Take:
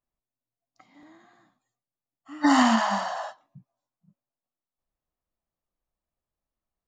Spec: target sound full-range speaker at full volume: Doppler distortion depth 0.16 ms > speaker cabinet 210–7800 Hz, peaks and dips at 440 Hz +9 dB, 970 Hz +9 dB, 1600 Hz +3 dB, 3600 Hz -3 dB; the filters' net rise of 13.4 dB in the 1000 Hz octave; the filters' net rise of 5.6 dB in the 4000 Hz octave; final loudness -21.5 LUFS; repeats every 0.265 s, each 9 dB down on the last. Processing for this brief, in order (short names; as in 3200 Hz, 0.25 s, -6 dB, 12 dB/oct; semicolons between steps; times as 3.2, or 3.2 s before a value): bell 1000 Hz +8 dB; bell 4000 Hz +8.5 dB; feedback echo 0.265 s, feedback 35%, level -9 dB; Doppler distortion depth 0.16 ms; speaker cabinet 210–7800 Hz, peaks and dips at 440 Hz +9 dB, 970 Hz +9 dB, 1600 Hz +3 dB, 3600 Hz -3 dB; gain -8 dB